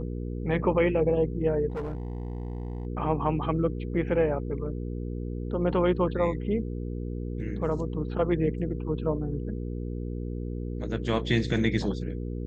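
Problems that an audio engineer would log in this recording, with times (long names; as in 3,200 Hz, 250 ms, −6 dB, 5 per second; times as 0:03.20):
mains hum 60 Hz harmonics 8 −33 dBFS
0:01.70–0:02.87: clipping −29 dBFS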